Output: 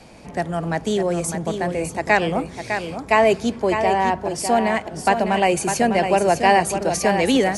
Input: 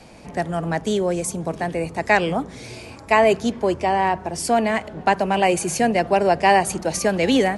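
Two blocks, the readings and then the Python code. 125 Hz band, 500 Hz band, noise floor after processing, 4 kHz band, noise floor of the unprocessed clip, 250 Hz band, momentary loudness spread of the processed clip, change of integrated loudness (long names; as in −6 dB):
+0.5 dB, +0.5 dB, −38 dBFS, +0.5 dB, −40 dBFS, +0.5 dB, 9 LU, +0.5 dB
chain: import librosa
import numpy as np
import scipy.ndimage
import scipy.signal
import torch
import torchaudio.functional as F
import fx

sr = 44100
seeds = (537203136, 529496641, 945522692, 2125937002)

y = x + 10.0 ** (-7.5 / 20.0) * np.pad(x, (int(604 * sr / 1000.0), 0))[:len(x)]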